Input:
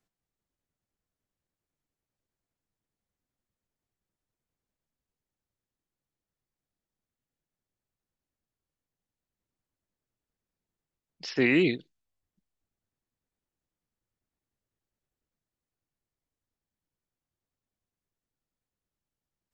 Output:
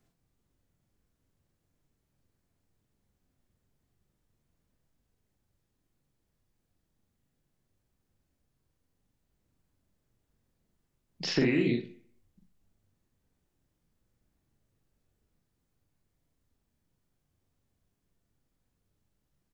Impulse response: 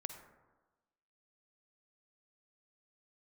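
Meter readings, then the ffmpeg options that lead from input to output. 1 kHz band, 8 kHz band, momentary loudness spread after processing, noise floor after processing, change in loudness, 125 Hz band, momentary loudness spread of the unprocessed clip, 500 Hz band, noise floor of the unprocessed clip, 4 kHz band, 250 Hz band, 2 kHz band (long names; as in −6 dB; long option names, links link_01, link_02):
−2.0 dB, can't be measured, 9 LU, −80 dBFS, −3.5 dB, +2.0 dB, 16 LU, −3.0 dB, below −85 dBFS, +1.0 dB, −1.5 dB, −6.5 dB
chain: -filter_complex "[0:a]acompressor=threshold=-34dB:ratio=12,lowshelf=frequency=380:gain=9.5,aecho=1:1:42|64:0.708|0.398,asplit=2[link_01][link_02];[1:a]atrim=start_sample=2205,asetrate=83790,aresample=44100[link_03];[link_02][link_03]afir=irnorm=-1:irlink=0,volume=5.5dB[link_04];[link_01][link_04]amix=inputs=2:normalize=0"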